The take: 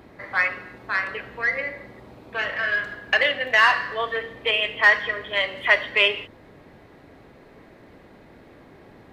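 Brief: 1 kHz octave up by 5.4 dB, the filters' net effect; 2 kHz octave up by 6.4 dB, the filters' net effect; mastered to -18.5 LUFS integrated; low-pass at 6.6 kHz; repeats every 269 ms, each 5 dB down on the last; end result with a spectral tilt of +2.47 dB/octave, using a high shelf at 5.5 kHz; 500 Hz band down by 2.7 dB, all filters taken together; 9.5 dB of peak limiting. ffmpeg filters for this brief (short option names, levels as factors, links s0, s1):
-af "lowpass=6600,equalizer=f=500:t=o:g=-6,equalizer=f=1000:t=o:g=6,equalizer=f=2000:t=o:g=6.5,highshelf=f=5500:g=-5,alimiter=limit=0.422:level=0:latency=1,aecho=1:1:269|538|807|1076|1345|1614|1883:0.562|0.315|0.176|0.0988|0.0553|0.031|0.0173,volume=0.944"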